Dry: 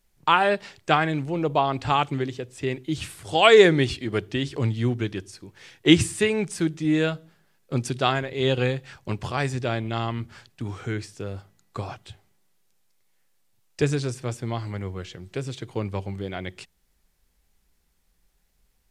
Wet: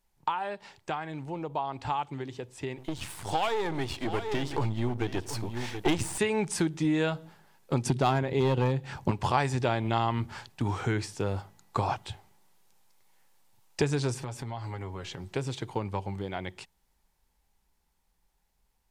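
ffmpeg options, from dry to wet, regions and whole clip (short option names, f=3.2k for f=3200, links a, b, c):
-filter_complex "[0:a]asettb=1/sr,asplit=3[a][b][c];[a]atrim=end=2.784[d];[b]atrim=start=2.78:end=6.18,asetpts=PTS-STARTPTS,afade=t=in:d=0.004:c=qsin,afade=t=out:st=3.396:d=0.004:c=qsin,aeval=exprs='if(lt(val(0),0),0.251*val(0),val(0))':c=same,acontrast=83,aecho=1:1:726:0.126,atrim=end_sample=149940[e];[c]atrim=start=6.176[f];[d][e]acrossfade=d=0.004:c1=hsin:c2=qsin[g];[g][f]acrossfade=d=0.004:c1=qsin:c2=hsin,asettb=1/sr,asplit=3[h][i][j];[h]atrim=end=7.864[k];[i]atrim=start=7.86:end=9.11,asetpts=PTS-STARTPTS,afade=t=in:d=0.004:c=qsin,afade=t=out:st=1.246:d=0.004:c=qsin,equalizer=f=170:t=o:w=2.9:g=9.5,volume=10.5dB,asoftclip=hard,volume=-10.5dB[l];[j]atrim=start=9.106[m];[k][l]acrossfade=d=0.004:c1=hsin:c2=qsin[n];[n][m]acrossfade=d=0.004:c1=qsin:c2=hsin,asettb=1/sr,asplit=3[o][p][q];[o]atrim=end=14.194[r];[p]atrim=start=14.19:end=15.24,asetpts=PTS-STARTPTS,afade=t=in:d=0.004:c=qsin,afade=t=out:st=1.046:d=0.004:c=qsin,aecho=1:1:7.3:0.49,atrim=end_sample=46305,acompressor=threshold=-36dB:ratio=8:attack=3.2:release=140:knee=1:detection=peak[s];[q]atrim=start=15.236[t];[r][s]acrossfade=d=0.004:c1=hsin:c2=qsin[u];[u][t]acrossfade=d=0.004:c1=qsin:c2=hsin,acompressor=threshold=-27dB:ratio=6,equalizer=f=890:w=3.1:g=10.5,dynaudnorm=f=250:g=31:m=11.5dB,volume=-6.5dB"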